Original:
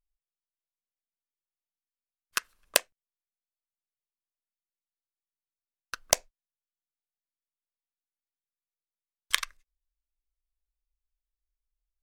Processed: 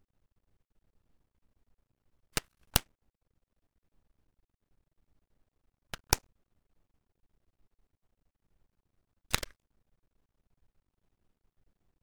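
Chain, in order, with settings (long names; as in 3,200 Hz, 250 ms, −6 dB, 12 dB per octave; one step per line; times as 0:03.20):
sub-harmonics by changed cycles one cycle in 2, inverted
background noise brown −69 dBFS
half-wave rectification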